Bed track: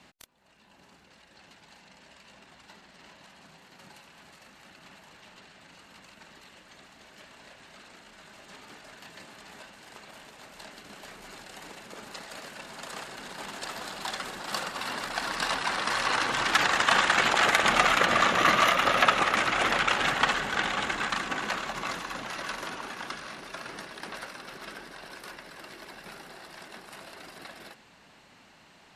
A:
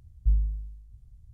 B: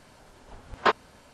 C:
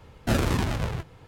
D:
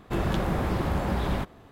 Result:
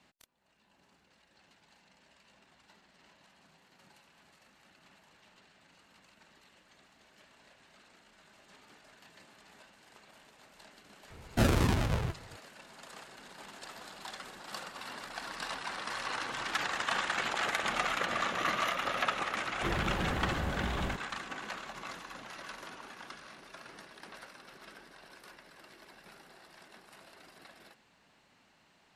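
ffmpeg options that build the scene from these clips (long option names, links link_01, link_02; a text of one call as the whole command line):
ffmpeg -i bed.wav -i cue0.wav -i cue1.wav -i cue2.wav -i cue3.wav -filter_complex "[0:a]volume=-10dB[link_01];[3:a]atrim=end=1.27,asetpts=PTS-STARTPTS,volume=-2.5dB,afade=type=in:duration=0.004:curve=hsin,afade=type=out:start_time=1.266:duration=0.004:curve=hsin,adelay=11100[link_02];[4:a]atrim=end=1.71,asetpts=PTS-STARTPTS,volume=-8dB,afade=type=in:duration=0.004:curve=hsin,afade=type=out:start_time=1.706:duration=0.004:curve=hsin,adelay=19520[link_03];[link_01][link_02][link_03]amix=inputs=3:normalize=0" out.wav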